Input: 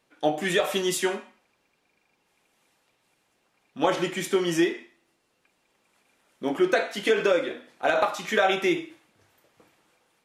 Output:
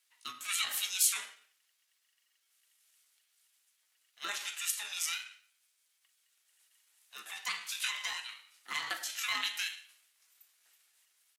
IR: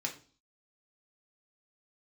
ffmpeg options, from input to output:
-af "highpass=f=830:w=0.5412,highpass=f=830:w=1.3066,aeval=exprs='val(0)*sin(2*PI*500*n/s)':c=same,atempo=0.9,aderivative,volume=6dB"

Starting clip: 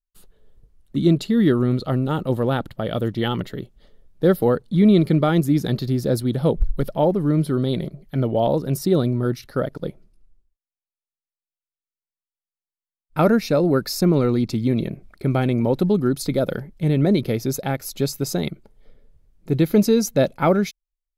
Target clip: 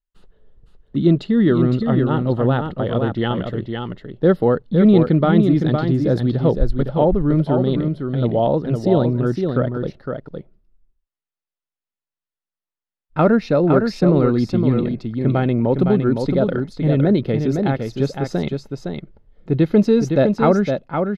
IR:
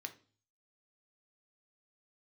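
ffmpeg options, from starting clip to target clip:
-filter_complex "[0:a]lowpass=3k,bandreject=f=2.3k:w=11,asplit=2[a][b];[b]aecho=0:1:511:0.531[c];[a][c]amix=inputs=2:normalize=0,volume=2dB"

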